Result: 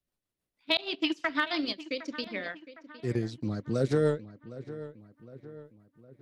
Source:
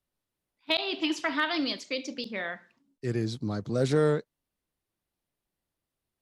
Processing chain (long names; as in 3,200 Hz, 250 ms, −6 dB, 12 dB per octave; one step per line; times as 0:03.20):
transient designer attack +3 dB, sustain −12 dB
rotating-speaker cabinet horn 6.3 Hz
feedback echo with a low-pass in the loop 760 ms, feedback 51%, low-pass 2,800 Hz, level −15 dB